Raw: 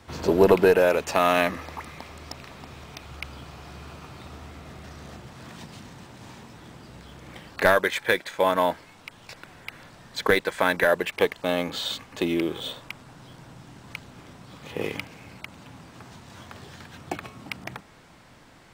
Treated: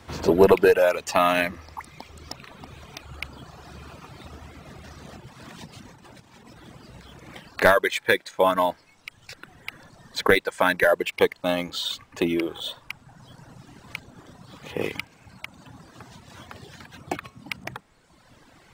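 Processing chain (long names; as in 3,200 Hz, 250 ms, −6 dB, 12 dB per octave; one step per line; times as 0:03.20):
reverb reduction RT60 1.5 s
0:05.89–0:06.58: compressor whose output falls as the input rises −51 dBFS, ratio −0.5
level +2.5 dB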